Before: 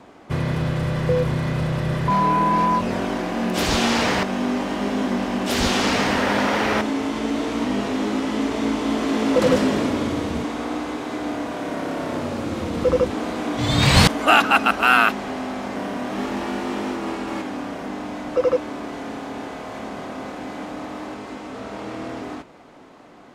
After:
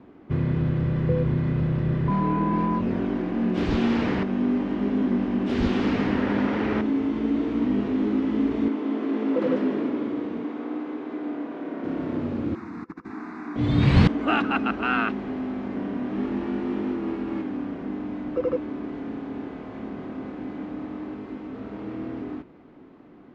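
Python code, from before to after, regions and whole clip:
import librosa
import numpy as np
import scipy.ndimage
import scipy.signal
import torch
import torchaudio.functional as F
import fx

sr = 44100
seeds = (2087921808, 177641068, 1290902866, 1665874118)

y = fx.chain(x, sr, fx.highpass(hz=300.0, slope=12),
    fx.high_shelf(hz=3800.0, db=-8.0), at=(8.68, 11.84))
y = fx.chain(y, sr, fx.weighting(curve='A'),
    fx.over_compress(threshold_db=-27.0, ratio=-0.5),
    fx.fixed_phaser(hz=1300.0, stages=4), at=(12.55, 13.56))
y = scipy.signal.sosfilt(scipy.signal.butter(2, 2700.0, 'lowpass', fs=sr, output='sos'), y)
y = fx.low_shelf_res(y, sr, hz=460.0, db=7.5, q=1.5)
y = F.gain(torch.from_numpy(y), -8.5).numpy()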